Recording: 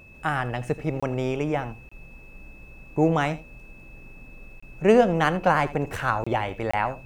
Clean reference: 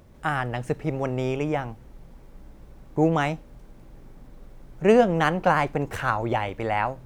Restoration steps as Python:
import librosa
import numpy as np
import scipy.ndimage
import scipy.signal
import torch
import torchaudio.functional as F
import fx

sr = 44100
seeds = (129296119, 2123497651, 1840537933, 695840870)

y = fx.notch(x, sr, hz=2600.0, q=30.0)
y = fx.fix_interpolate(y, sr, at_s=(1.0, 1.89, 4.6, 6.24, 6.71), length_ms=25.0)
y = fx.fix_echo_inverse(y, sr, delay_ms=81, level_db=-17.0)